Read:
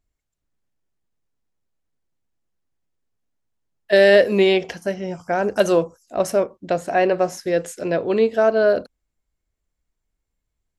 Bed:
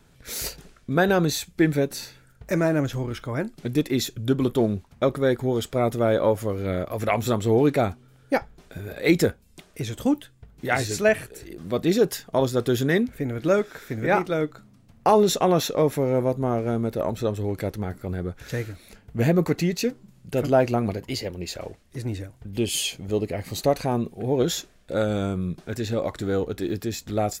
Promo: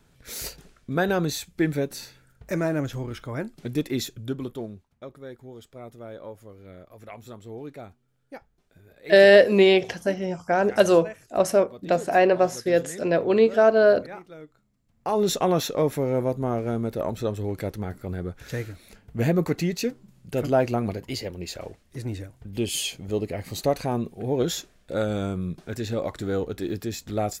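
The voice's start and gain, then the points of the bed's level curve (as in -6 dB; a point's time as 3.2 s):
5.20 s, -0.5 dB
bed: 4.02 s -3.5 dB
5.01 s -19 dB
14.82 s -19 dB
15.27 s -2 dB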